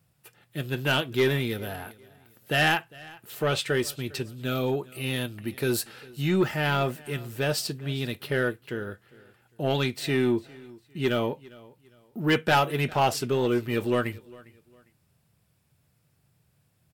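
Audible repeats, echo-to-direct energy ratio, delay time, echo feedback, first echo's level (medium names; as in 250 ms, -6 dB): 2, -22.0 dB, 403 ms, 30%, -22.5 dB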